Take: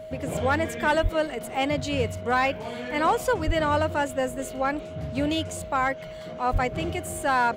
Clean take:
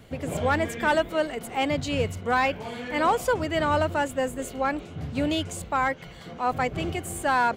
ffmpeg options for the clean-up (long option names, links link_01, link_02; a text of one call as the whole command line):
ffmpeg -i in.wav -filter_complex "[0:a]bandreject=frequency=630:width=30,asplit=3[link_01][link_02][link_03];[link_01]afade=type=out:start_time=1.02:duration=0.02[link_04];[link_02]highpass=frequency=140:width=0.5412,highpass=frequency=140:width=1.3066,afade=type=in:start_time=1.02:duration=0.02,afade=type=out:start_time=1.14:duration=0.02[link_05];[link_03]afade=type=in:start_time=1.14:duration=0.02[link_06];[link_04][link_05][link_06]amix=inputs=3:normalize=0,asplit=3[link_07][link_08][link_09];[link_07]afade=type=out:start_time=3.46:duration=0.02[link_10];[link_08]highpass=frequency=140:width=0.5412,highpass=frequency=140:width=1.3066,afade=type=in:start_time=3.46:duration=0.02,afade=type=out:start_time=3.58:duration=0.02[link_11];[link_09]afade=type=in:start_time=3.58:duration=0.02[link_12];[link_10][link_11][link_12]amix=inputs=3:normalize=0,asplit=3[link_13][link_14][link_15];[link_13]afade=type=out:start_time=6.52:duration=0.02[link_16];[link_14]highpass=frequency=140:width=0.5412,highpass=frequency=140:width=1.3066,afade=type=in:start_time=6.52:duration=0.02,afade=type=out:start_time=6.64:duration=0.02[link_17];[link_15]afade=type=in:start_time=6.64:duration=0.02[link_18];[link_16][link_17][link_18]amix=inputs=3:normalize=0" out.wav